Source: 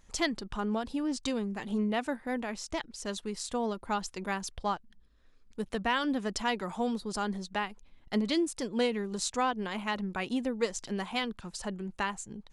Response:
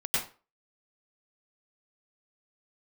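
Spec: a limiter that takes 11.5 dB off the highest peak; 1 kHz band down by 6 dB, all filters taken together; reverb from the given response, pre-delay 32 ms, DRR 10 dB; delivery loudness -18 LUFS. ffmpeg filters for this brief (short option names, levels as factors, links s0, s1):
-filter_complex "[0:a]equalizer=f=1000:t=o:g=-8,alimiter=level_in=1.41:limit=0.0631:level=0:latency=1,volume=0.708,asplit=2[s0][s1];[1:a]atrim=start_sample=2205,adelay=32[s2];[s1][s2]afir=irnorm=-1:irlink=0,volume=0.119[s3];[s0][s3]amix=inputs=2:normalize=0,volume=8.91"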